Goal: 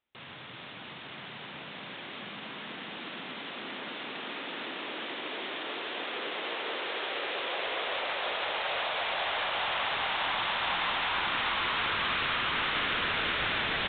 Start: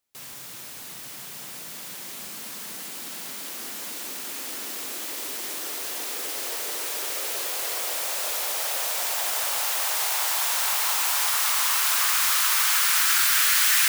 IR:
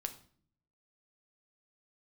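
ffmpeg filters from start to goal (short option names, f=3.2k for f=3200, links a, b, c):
-filter_complex "[0:a]asplit=2[a][b];[1:a]atrim=start_sample=2205,asetrate=32193,aresample=44100,adelay=129[c];[b][c]afir=irnorm=-1:irlink=0,volume=-8dB[d];[a][d]amix=inputs=2:normalize=0,aeval=exprs='0.0944*(abs(mod(val(0)/0.0944+3,4)-2)-1)':c=same,aresample=8000,aresample=44100,asplit=5[e][f][g][h][i];[f]adelay=435,afreqshift=43,volume=-7dB[j];[g]adelay=870,afreqshift=86,volume=-16.1dB[k];[h]adelay=1305,afreqshift=129,volume=-25.2dB[l];[i]adelay=1740,afreqshift=172,volume=-34.4dB[m];[e][j][k][l][m]amix=inputs=5:normalize=0,volume=1dB"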